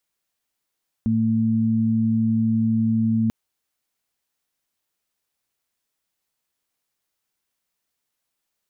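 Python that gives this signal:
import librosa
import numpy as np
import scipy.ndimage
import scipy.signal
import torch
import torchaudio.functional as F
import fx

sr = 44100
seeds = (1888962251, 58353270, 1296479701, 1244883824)

y = fx.additive_steady(sr, length_s=2.24, hz=112.0, level_db=-23.5, upper_db=(5.5,))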